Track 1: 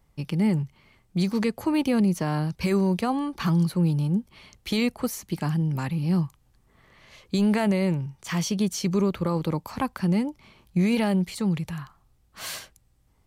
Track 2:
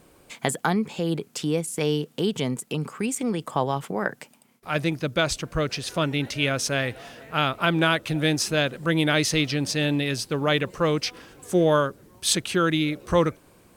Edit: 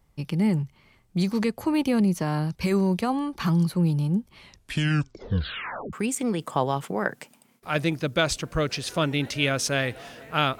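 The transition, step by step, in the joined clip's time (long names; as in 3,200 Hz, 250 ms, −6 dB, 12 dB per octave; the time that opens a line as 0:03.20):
track 1
0:04.38: tape stop 1.55 s
0:05.93: continue with track 2 from 0:02.93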